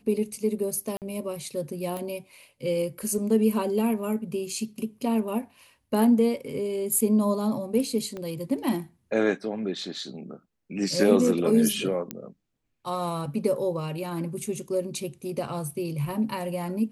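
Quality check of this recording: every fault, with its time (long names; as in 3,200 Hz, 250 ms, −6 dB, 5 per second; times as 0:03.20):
0:00.97–0:01.02: drop-out 48 ms
0:01.97: click −20 dBFS
0:08.17: click −23 dBFS
0:12.11: click −15 dBFS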